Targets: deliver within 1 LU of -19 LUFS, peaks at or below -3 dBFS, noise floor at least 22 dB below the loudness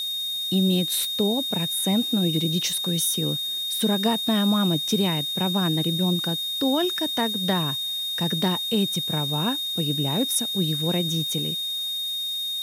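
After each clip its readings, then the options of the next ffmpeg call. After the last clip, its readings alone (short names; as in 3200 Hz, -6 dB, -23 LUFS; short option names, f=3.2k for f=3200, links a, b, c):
steady tone 3700 Hz; tone level -26 dBFS; noise floor -29 dBFS; noise floor target -45 dBFS; loudness -23.0 LUFS; peak -10.0 dBFS; loudness target -19.0 LUFS
-> -af "bandreject=f=3.7k:w=30"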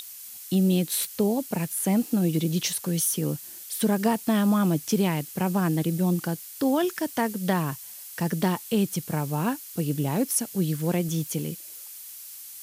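steady tone none; noise floor -42 dBFS; noise floor target -48 dBFS
-> -af "afftdn=nr=6:nf=-42"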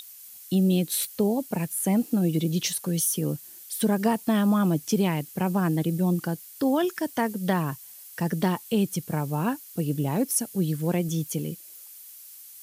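noise floor -46 dBFS; noise floor target -48 dBFS
-> -af "afftdn=nr=6:nf=-46"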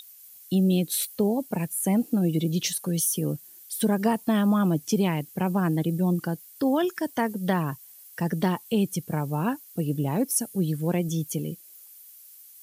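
noise floor -50 dBFS; loudness -26.0 LUFS; peak -11.5 dBFS; loudness target -19.0 LUFS
-> -af "volume=7dB"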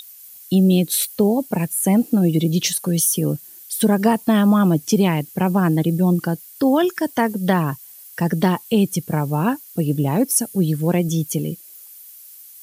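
loudness -19.0 LUFS; peak -4.5 dBFS; noise floor -43 dBFS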